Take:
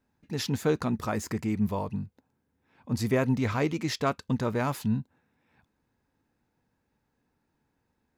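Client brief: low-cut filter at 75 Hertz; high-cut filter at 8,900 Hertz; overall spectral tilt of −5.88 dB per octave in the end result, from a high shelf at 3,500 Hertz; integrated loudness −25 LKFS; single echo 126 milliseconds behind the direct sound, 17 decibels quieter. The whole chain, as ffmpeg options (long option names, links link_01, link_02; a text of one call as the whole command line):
ffmpeg -i in.wav -af "highpass=75,lowpass=8900,highshelf=frequency=3500:gain=-6.5,aecho=1:1:126:0.141,volume=5dB" out.wav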